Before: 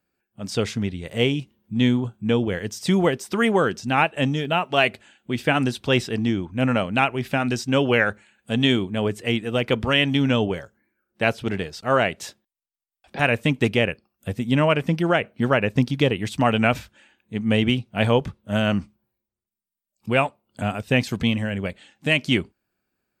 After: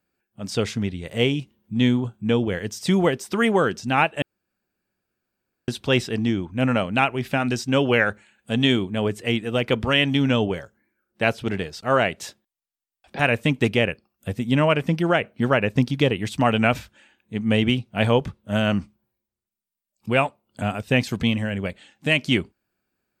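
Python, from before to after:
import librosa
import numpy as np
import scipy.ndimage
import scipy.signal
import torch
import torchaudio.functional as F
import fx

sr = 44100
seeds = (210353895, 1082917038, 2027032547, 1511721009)

y = fx.edit(x, sr, fx.room_tone_fill(start_s=4.22, length_s=1.46), tone=tone)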